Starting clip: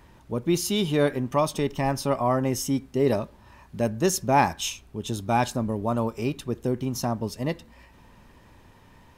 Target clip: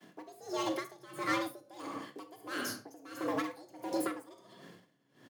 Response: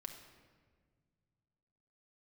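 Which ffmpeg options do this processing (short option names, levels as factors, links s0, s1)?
-filter_complex "[0:a]agate=range=0.0224:threshold=0.00562:ratio=3:detection=peak,asplit=2[s0][s1];[s1]adelay=120,lowpass=f=1200:p=1,volume=0.168,asplit=2[s2][s3];[s3]adelay=120,lowpass=f=1200:p=1,volume=0.42,asplit=2[s4][s5];[s5]adelay=120,lowpass=f=1200:p=1,volume=0.42,asplit=2[s6][s7];[s7]adelay=120,lowpass=f=1200:p=1,volume=0.42[s8];[s0][s2][s4][s6][s8]amix=inputs=5:normalize=0,asplit=2[s9][s10];[s10]aeval=exprs='0.0668*(abs(mod(val(0)/0.0668+3,4)-2)-1)':c=same,volume=0.501[s11];[s9][s11]amix=inputs=2:normalize=0,acrossover=split=100|2000[s12][s13][s14];[s12]acompressor=threshold=0.00631:ratio=4[s15];[s13]acompressor=threshold=0.0178:ratio=4[s16];[s14]acompressor=threshold=0.01:ratio=4[s17];[s15][s16][s17]amix=inputs=3:normalize=0,acrossover=split=1700[s18][s19];[s19]asoftclip=type=tanh:threshold=0.0112[s20];[s18][s20]amix=inputs=2:normalize=0,afreqshift=60[s21];[1:a]atrim=start_sample=2205,afade=t=out:st=0.29:d=0.01,atrim=end_sample=13230,asetrate=42777,aresample=44100[s22];[s21][s22]afir=irnorm=-1:irlink=0,asetrate=76440,aresample=44100,aeval=exprs='val(0)*pow(10,-23*(0.5-0.5*cos(2*PI*1.5*n/s))/20)':c=same,volume=2.24"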